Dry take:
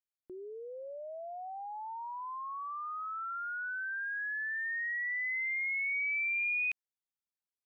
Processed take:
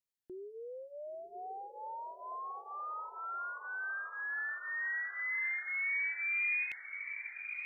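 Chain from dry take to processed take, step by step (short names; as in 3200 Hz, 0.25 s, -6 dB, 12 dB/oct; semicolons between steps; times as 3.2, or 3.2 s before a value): on a send: diffused feedback echo 1.043 s, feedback 50%, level -9 dB; on the sum: cascading phaser falling 1.7 Hz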